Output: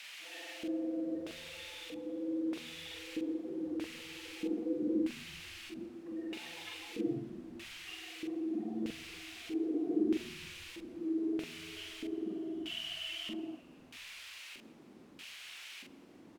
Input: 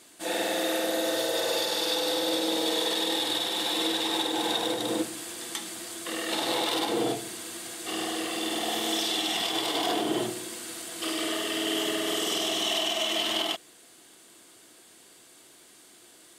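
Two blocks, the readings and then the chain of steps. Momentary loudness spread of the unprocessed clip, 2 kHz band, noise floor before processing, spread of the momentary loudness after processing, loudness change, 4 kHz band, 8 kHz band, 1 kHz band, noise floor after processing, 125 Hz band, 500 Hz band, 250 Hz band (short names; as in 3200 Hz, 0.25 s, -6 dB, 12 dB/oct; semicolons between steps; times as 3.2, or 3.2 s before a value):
9 LU, -13.0 dB, -55 dBFS, 13 LU, -11.5 dB, -18.0 dB, -21.0 dB, -24.0 dB, -57 dBFS, -5.5 dB, -12.0 dB, -3.0 dB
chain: spectral gate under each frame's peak -10 dB strong; EQ curve 150 Hz 0 dB, 250 Hz -10 dB, 590 Hz -21 dB; in parallel at -2 dB: compressor, threshold -45 dBFS, peak gain reduction 7 dB; on the sum: LFO low-pass square 0.17 Hz 480–2000 Hz; requantised 8-bit, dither triangular; LFO band-pass square 0.79 Hz 250–2600 Hz; doubler 44 ms -4 dB; on a send: frequency-shifting echo 0.167 s, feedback 63%, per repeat -78 Hz, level -23 dB; on the sum: gain +9 dB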